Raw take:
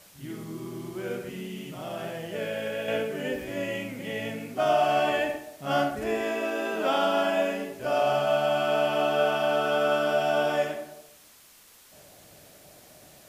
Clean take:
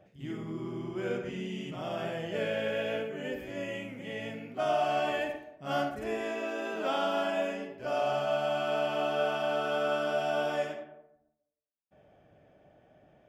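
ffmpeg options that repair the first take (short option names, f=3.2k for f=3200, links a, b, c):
-af "afwtdn=0.0022,asetnsamples=n=441:p=0,asendcmd='2.88 volume volume -5.5dB',volume=0dB"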